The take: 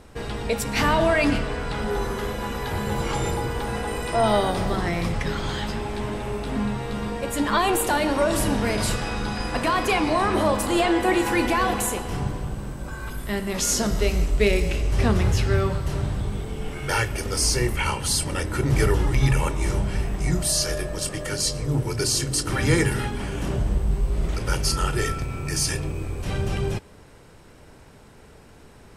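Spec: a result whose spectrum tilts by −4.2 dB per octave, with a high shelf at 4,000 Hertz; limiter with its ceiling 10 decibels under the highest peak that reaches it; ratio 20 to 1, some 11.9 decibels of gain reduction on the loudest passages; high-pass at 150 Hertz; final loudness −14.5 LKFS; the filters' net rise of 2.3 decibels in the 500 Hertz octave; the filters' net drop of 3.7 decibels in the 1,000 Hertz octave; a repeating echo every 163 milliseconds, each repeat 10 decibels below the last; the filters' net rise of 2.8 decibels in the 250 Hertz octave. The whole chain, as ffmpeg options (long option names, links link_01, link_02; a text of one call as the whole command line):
ffmpeg -i in.wav -af "highpass=150,equalizer=frequency=250:width_type=o:gain=4,equalizer=frequency=500:width_type=o:gain=3.5,equalizer=frequency=1000:width_type=o:gain=-7,highshelf=frequency=4000:gain=5.5,acompressor=threshold=-26dB:ratio=20,alimiter=limit=-24dB:level=0:latency=1,aecho=1:1:163|326|489|652:0.316|0.101|0.0324|0.0104,volume=18dB" out.wav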